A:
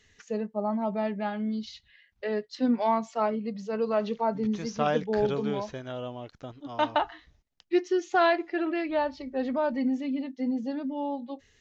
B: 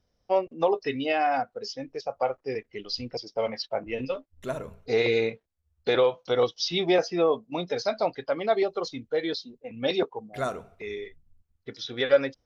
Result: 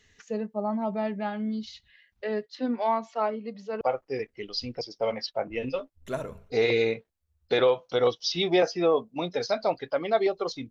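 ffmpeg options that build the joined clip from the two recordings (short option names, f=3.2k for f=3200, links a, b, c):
-filter_complex "[0:a]asettb=1/sr,asplit=3[a][b][c];[a]atrim=end=2.464[d];[b]atrim=start=2.46:end=3.81,asetpts=PTS-STARTPTS,afade=t=in:d=0.004:c=qsin,afade=t=out:st=1.346:d=0.004:c=qsin,highpass=280,lowpass=5k[e];[c]atrim=start=3.806[f];[d][e]acrossfade=d=0.004:c1=hsin:c2=qsin[g];[g][f]acrossfade=d=0.004:c1=qsin:c2=hsin,apad=whole_dur=10.7,atrim=end=10.7,atrim=end=3.812[h];[1:a]atrim=start=2.168:end=9.06[i];[h][i]acrossfade=d=0.004:c1=hsin:c2=hsin"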